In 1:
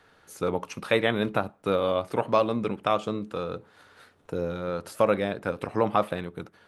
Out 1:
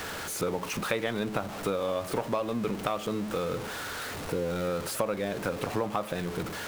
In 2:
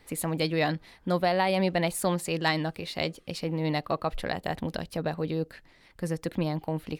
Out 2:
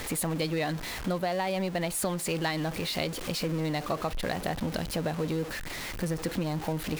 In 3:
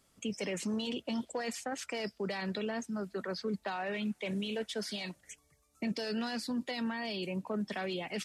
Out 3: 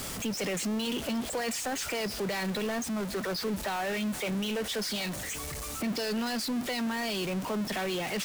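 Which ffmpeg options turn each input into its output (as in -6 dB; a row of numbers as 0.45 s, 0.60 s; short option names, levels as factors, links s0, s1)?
-af "aeval=exprs='val(0)+0.5*0.0266*sgn(val(0))':c=same,acompressor=threshold=0.0501:ratio=6"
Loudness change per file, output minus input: -4.0 LU, -1.5 LU, +5.0 LU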